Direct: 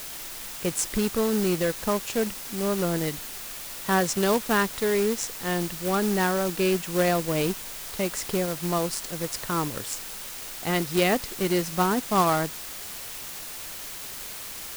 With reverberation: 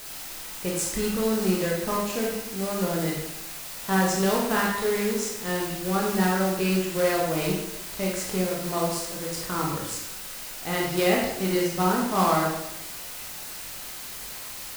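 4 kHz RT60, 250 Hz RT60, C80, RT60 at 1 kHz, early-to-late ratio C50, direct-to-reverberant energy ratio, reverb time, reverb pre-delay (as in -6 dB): 0.75 s, 0.90 s, 5.0 dB, 0.85 s, 2.0 dB, -3.0 dB, 0.90 s, 17 ms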